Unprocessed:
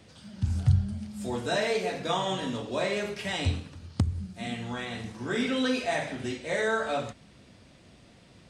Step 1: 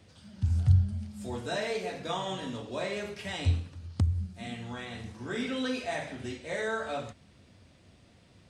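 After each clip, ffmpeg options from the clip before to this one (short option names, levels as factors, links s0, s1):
-af "equalizer=f=87:t=o:w=0.42:g=8.5,volume=0.562"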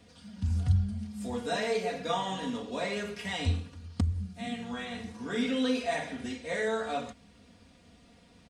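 -af "aecho=1:1:4.2:0.69"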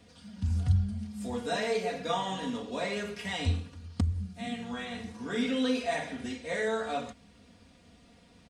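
-af anull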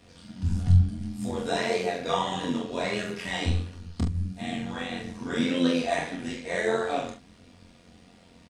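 -filter_complex "[0:a]flanger=delay=20:depth=7.2:speed=1.6,tremolo=f=88:d=0.71,asplit=2[s0][s1];[s1]adelay=43,volume=0.501[s2];[s0][s2]amix=inputs=2:normalize=0,volume=2.82"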